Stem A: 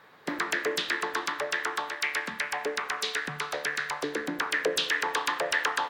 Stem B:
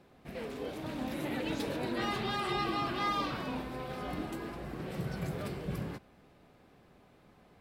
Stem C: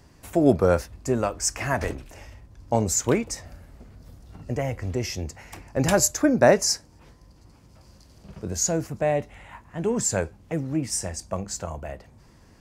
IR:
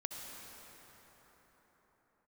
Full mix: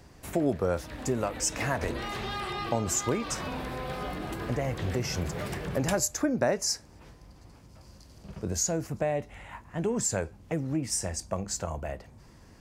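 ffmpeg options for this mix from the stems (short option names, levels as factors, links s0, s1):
-filter_complex "[0:a]volume=0.1[s0];[1:a]equalizer=f=270:w=1.5:g=-4.5,alimiter=level_in=2.82:limit=0.0631:level=0:latency=1:release=111,volume=0.355,dynaudnorm=f=170:g=17:m=2.51,volume=0.891[s1];[2:a]volume=1[s2];[s0][s1][s2]amix=inputs=3:normalize=0,acompressor=threshold=0.0447:ratio=2.5"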